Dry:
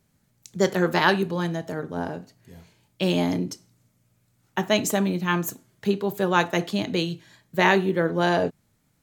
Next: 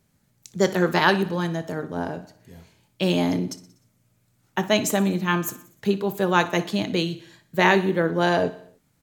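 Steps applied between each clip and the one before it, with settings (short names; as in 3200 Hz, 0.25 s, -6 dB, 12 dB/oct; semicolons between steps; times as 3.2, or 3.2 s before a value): feedback echo 61 ms, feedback 58%, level -17.5 dB; gain +1 dB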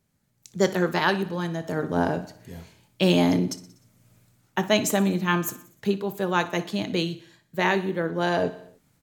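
AGC gain up to 15 dB; gain -6 dB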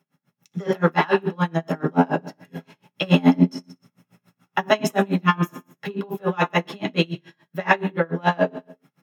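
soft clip -10.5 dBFS, distortion -20 dB; reverb RT60 0.25 s, pre-delay 3 ms, DRR 0 dB; dB-linear tremolo 7 Hz, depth 29 dB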